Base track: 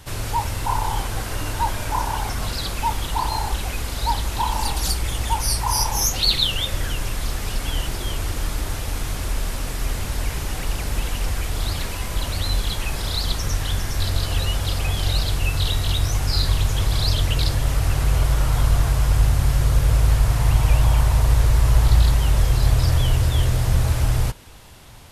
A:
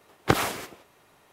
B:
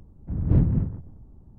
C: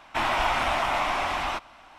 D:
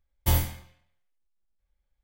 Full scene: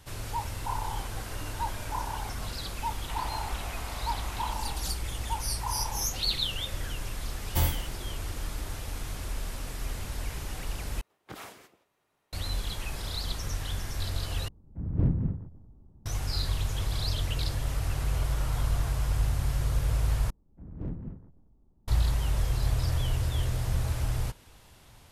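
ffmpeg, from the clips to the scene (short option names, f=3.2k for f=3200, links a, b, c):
-filter_complex "[2:a]asplit=2[a][b];[0:a]volume=-10dB[c];[3:a]acompressor=threshold=-35dB:ratio=6:attack=3.2:release=140:knee=1:detection=peak[d];[1:a]alimiter=limit=-12.5dB:level=0:latency=1:release=19[e];[b]equalizer=f=100:t=o:w=1.5:g=-8[f];[c]asplit=4[g][h][i][j];[g]atrim=end=11.014[k];[e]atrim=end=1.32,asetpts=PTS-STARTPTS,volume=-16.5dB[l];[h]atrim=start=12.326:end=14.484[m];[a]atrim=end=1.58,asetpts=PTS-STARTPTS,volume=-6dB[n];[i]atrim=start=16.056:end=20.304[o];[f]atrim=end=1.58,asetpts=PTS-STARTPTS,volume=-12dB[p];[j]atrim=start=21.876[q];[d]atrim=end=1.98,asetpts=PTS-STARTPTS,volume=-5dB,afade=t=in:d=0.004:c=hsin,afade=t=out:st=1.976:d=0.004:c=hsin,adelay=2950[r];[4:a]atrim=end=2.03,asetpts=PTS-STARTPTS,volume=-3dB,afade=t=in:d=0.004:c=hsin,afade=t=out:st=2.026:d=0.004:c=hsin,adelay=7290[s];[k][l]acrossfade=d=0.004:c1=hsin:c2=hsin[t];[t][m]acrossfade=d=0.004:c1=hsin:c2=hsin[u];[u][n]acrossfade=d=0.004:c1=hsin:c2=hsin[v];[v][o]acrossfade=d=0.004:c1=hsin:c2=hsin[w];[w][p]acrossfade=d=0.004:c1=hsin:c2=hsin[x];[x][q]acrossfade=d=0.004:c1=hsin:c2=hsin[y];[y][r][s]amix=inputs=3:normalize=0"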